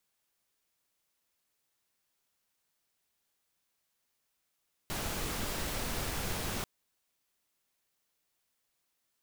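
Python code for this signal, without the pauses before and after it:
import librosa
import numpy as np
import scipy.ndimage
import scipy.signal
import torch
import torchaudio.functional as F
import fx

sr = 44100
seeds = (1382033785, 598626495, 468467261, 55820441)

y = fx.noise_colour(sr, seeds[0], length_s=1.74, colour='pink', level_db=-35.5)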